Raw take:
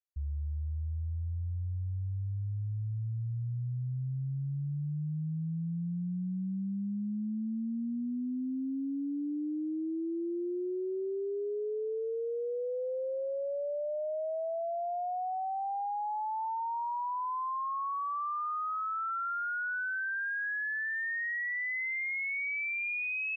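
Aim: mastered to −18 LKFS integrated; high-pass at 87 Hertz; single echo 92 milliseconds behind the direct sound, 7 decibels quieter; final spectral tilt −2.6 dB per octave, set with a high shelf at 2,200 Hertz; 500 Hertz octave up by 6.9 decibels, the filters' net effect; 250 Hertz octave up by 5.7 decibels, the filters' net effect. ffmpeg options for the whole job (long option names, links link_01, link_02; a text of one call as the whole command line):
ffmpeg -i in.wav -af "highpass=87,equalizer=frequency=250:width_type=o:gain=5.5,equalizer=frequency=500:width_type=o:gain=6.5,highshelf=frequency=2200:gain=8,aecho=1:1:92:0.447,volume=11dB" out.wav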